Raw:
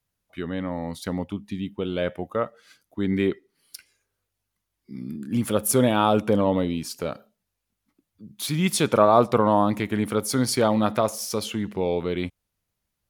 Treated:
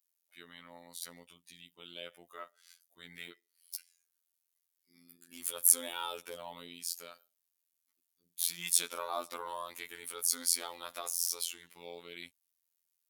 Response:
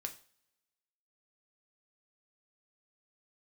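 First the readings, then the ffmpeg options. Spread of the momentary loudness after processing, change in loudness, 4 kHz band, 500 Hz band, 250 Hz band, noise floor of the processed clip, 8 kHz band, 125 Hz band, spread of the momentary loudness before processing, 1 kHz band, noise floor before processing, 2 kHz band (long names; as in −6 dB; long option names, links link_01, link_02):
21 LU, −9.0 dB, −6.5 dB, −24.5 dB, −31.5 dB, −84 dBFS, 0.0 dB, −35.0 dB, 14 LU, −18.5 dB, −81 dBFS, −12.5 dB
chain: -af "afftfilt=real='hypot(re,im)*cos(PI*b)':imag='0':win_size=2048:overlap=0.75,aderivative,volume=2dB"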